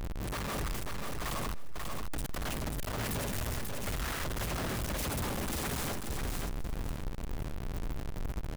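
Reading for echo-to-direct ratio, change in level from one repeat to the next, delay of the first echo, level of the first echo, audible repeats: −4.0 dB, −15.5 dB, 539 ms, −4.0 dB, 3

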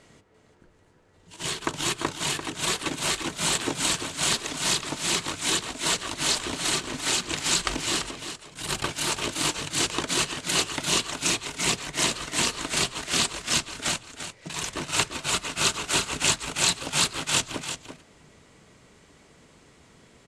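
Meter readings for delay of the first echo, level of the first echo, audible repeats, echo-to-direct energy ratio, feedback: 343 ms, −9.0 dB, 1, −9.0 dB, repeats not evenly spaced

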